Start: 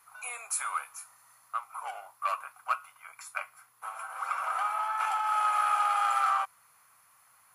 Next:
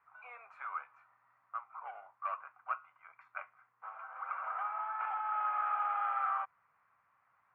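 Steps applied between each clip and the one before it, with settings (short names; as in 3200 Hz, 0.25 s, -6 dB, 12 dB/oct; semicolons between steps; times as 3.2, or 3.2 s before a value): LPF 2100 Hz 24 dB/oct; gain -7 dB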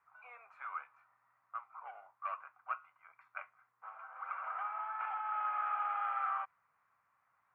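dynamic EQ 2800 Hz, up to +4 dB, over -49 dBFS, Q 0.74; gain -3.5 dB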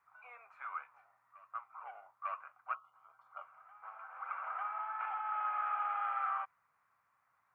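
spectral gain 2.75–3.77, 1400–2800 Hz -21 dB; reverse echo 0.898 s -19.5 dB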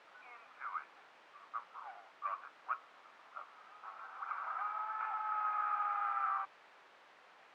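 added noise pink -55 dBFS; BPF 740–2200 Hz; gain +1 dB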